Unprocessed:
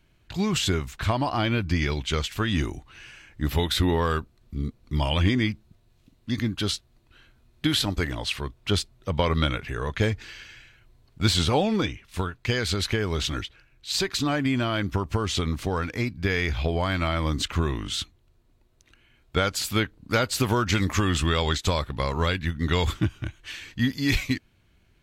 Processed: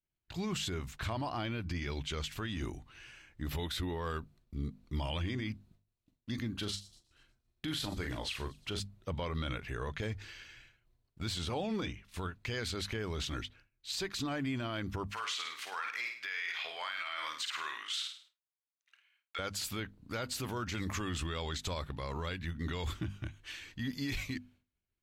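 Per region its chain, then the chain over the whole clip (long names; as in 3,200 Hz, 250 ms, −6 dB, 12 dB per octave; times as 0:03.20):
0:06.51–0:08.80: double-tracking delay 39 ms −8 dB + delay with a high-pass on its return 118 ms, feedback 54%, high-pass 5,100 Hz, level −17 dB
0:15.11–0:19.39: high-pass filter 1,300 Hz + parametric band 1,900 Hz +7.5 dB 2.4 octaves + flutter between parallel walls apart 8.9 metres, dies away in 0.45 s
whole clip: downward expander −48 dBFS; mains-hum notches 50/100/150/200/250 Hz; brickwall limiter −20 dBFS; level −7.5 dB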